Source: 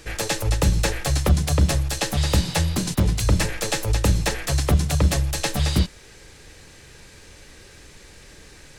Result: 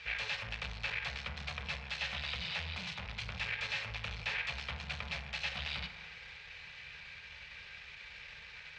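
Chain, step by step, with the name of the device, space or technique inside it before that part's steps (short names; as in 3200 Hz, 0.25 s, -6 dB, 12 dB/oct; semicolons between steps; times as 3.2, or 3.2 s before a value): 3.72–4.37 HPF 66 Hz 6 dB/oct; scooped metal amplifier (tube stage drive 33 dB, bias 0.55; speaker cabinet 86–3600 Hz, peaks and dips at 97 Hz -8 dB, 210 Hz +5 dB, 300 Hz -8 dB, 2400 Hz +7 dB; passive tone stack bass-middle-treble 10-0-10); FDN reverb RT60 1.9 s, low-frequency decay 0.8×, high-frequency decay 0.3×, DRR 7 dB; gain +5.5 dB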